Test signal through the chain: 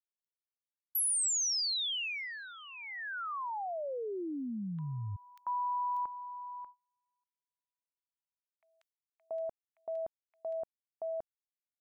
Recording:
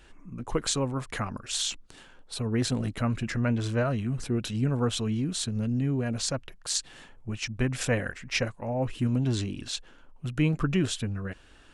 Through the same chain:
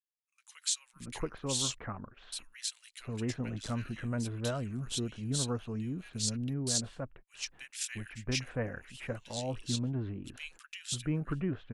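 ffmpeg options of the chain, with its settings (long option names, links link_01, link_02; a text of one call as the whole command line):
ffmpeg -i in.wav -filter_complex "[0:a]highshelf=frequency=3300:gain=7.5,agate=range=-42dB:threshold=-41dB:ratio=16:detection=peak,acrossover=split=1900[link_01][link_02];[link_01]adelay=680[link_03];[link_03][link_02]amix=inputs=2:normalize=0,volume=-8dB" out.wav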